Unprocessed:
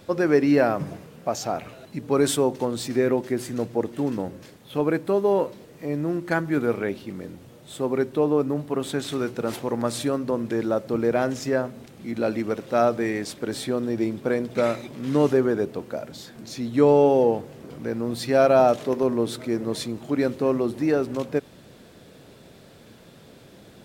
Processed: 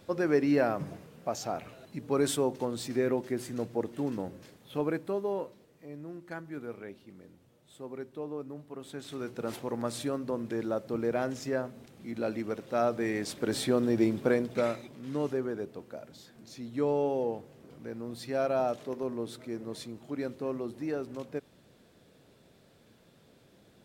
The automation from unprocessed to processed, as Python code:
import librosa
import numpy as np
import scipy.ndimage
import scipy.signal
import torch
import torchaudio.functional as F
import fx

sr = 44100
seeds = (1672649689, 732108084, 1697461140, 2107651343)

y = fx.gain(x, sr, db=fx.line((4.77, -7.0), (5.89, -17.0), (8.78, -17.0), (9.44, -8.0), (12.82, -8.0), (13.55, -1.0), (14.22, -1.0), (15.03, -12.0)))